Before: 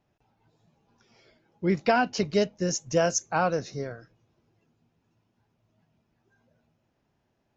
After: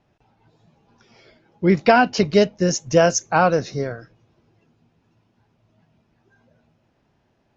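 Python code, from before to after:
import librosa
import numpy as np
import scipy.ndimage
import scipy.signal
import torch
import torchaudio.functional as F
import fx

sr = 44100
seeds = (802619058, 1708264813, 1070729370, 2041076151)

y = scipy.signal.sosfilt(scipy.signal.butter(2, 5900.0, 'lowpass', fs=sr, output='sos'), x)
y = F.gain(torch.from_numpy(y), 8.5).numpy()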